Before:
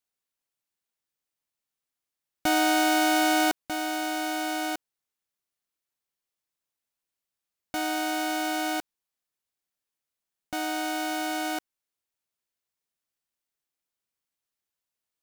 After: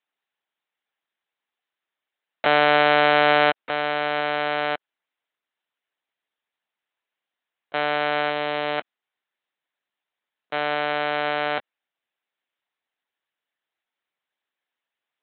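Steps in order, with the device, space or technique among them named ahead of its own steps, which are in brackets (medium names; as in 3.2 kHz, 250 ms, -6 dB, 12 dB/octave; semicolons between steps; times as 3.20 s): 8.30–8.78 s: peaking EQ 1.3 kHz -5 dB 1.5 oct; talking toy (LPC vocoder at 8 kHz pitch kept; high-pass 350 Hz 12 dB/octave; peaking EQ 1.8 kHz +4 dB 0.31 oct); trim +7.5 dB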